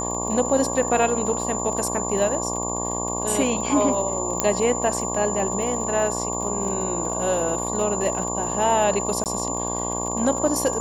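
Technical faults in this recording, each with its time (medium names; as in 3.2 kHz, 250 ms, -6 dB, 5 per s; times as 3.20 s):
buzz 60 Hz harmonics 19 -29 dBFS
crackle 42 per s -30 dBFS
whine 7.1 kHz -28 dBFS
4.40 s: pop -3 dBFS
9.24–9.26 s: dropout 18 ms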